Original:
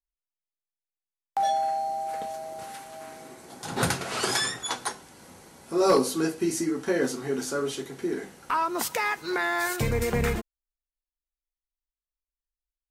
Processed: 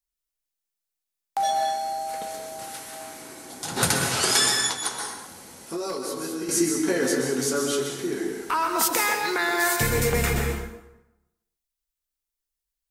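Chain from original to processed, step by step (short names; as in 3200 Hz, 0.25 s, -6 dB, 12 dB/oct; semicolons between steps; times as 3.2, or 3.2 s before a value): plate-style reverb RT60 0.96 s, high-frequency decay 0.7×, pre-delay 0.115 s, DRR 2 dB; 4.67–6.49 compressor 16:1, threshold -28 dBFS, peak gain reduction 13.5 dB; high shelf 3200 Hz +9 dB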